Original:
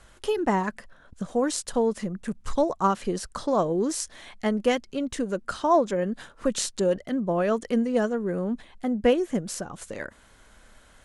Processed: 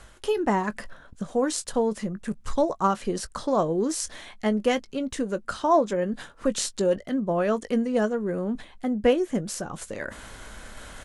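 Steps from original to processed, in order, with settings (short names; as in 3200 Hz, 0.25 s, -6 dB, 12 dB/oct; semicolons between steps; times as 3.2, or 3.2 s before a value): reverse; upward compressor, threshold -29 dBFS; reverse; doubler 19 ms -14 dB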